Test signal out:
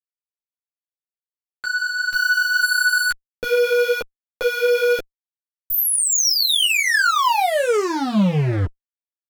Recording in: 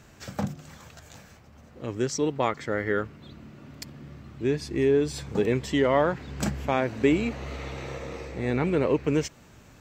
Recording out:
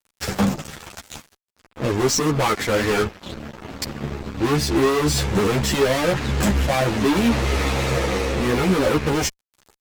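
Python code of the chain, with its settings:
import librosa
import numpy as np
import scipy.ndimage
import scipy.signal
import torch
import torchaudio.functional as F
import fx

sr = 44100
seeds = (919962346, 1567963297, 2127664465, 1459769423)

y = fx.fuzz(x, sr, gain_db=39.0, gate_db=-43.0)
y = fx.ensemble(y, sr)
y = y * librosa.db_to_amplitude(-1.0)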